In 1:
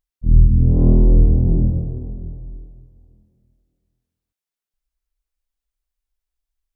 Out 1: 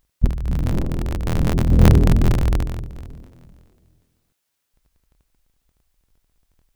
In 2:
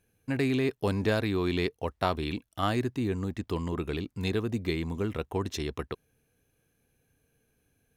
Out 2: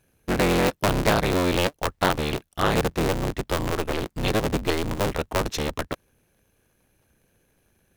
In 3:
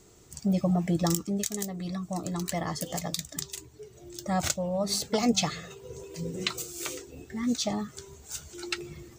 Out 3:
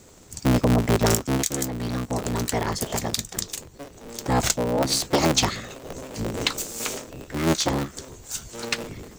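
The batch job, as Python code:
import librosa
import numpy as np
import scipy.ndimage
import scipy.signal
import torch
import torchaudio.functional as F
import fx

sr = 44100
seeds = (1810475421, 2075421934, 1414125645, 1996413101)

y = fx.cycle_switch(x, sr, every=3, mode='inverted')
y = fx.over_compress(y, sr, threshold_db=-23.0, ratio=-1.0)
y = F.gain(torch.from_numpy(y), 6.0).numpy()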